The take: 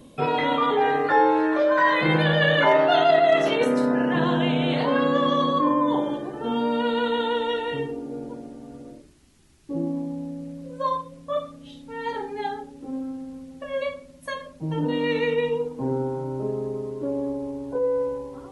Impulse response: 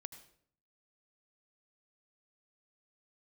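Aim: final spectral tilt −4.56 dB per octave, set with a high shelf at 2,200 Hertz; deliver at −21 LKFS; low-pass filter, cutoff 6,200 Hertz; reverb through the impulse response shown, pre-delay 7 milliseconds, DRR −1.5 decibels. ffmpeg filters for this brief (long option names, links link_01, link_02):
-filter_complex "[0:a]lowpass=6200,highshelf=frequency=2200:gain=-3.5,asplit=2[link_01][link_02];[1:a]atrim=start_sample=2205,adelay=7[link_03];[link_02][link_03]afir=irnorm=-1:irlink=0,volume=6dB[link_04];[link_01][link_04]amix=inputs=2:normalize=0,volume=-1.5dB"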